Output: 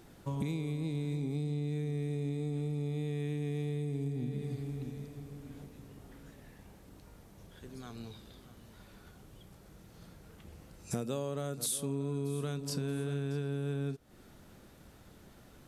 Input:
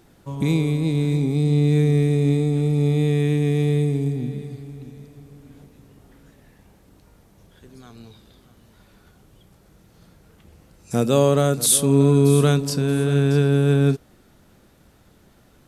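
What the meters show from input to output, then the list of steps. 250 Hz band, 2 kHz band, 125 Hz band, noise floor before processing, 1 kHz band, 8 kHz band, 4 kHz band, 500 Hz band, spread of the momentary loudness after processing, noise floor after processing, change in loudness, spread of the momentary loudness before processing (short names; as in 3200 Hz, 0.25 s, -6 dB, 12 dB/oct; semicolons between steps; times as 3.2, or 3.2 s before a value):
-16.0 dB, -16.5 dB, -16.0 dB, -55 dBFS, -17.0 dB, -17.0 dB, -15.5 dB, -17.5 dB, 21 LU, -57 dBFS, -17.5 dB, 12 LU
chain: compressor 10:1, threshold -30 dBFS, peak gain reduction 19 dB; gain -2 dB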